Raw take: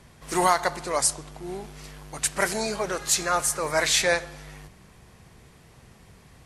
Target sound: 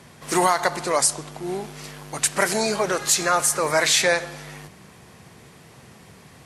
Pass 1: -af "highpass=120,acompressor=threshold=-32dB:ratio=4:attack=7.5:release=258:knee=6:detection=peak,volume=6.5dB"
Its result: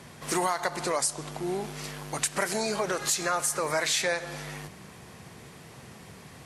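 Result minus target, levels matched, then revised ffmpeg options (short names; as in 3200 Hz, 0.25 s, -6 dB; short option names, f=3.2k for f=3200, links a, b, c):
compressor: peak gain reduction +8.5 dB
-af "highpass=120,acompressor=threshold=-20.5dB:ratio=4:attack=7.5:release=258:knee=6:detection=peak,volume=6.5dB"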